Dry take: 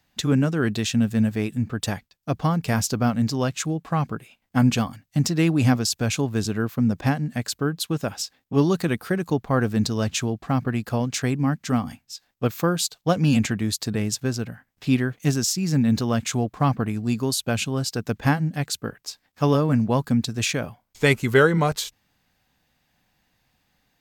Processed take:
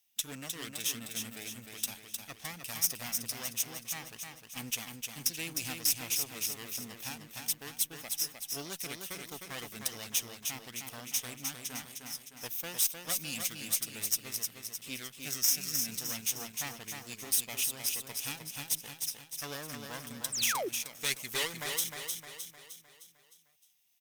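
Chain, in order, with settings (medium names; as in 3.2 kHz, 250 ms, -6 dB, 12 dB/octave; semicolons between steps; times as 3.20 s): comb filter that takes the minimum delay 0.34 ms; pre-emphasis filter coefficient 0.97; on a send: feedback delay 307 ms, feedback 50%, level -5 dB; on the sum: painted sound fall, 20.32–20.69 s, 310–9300 Hz -34 dBFS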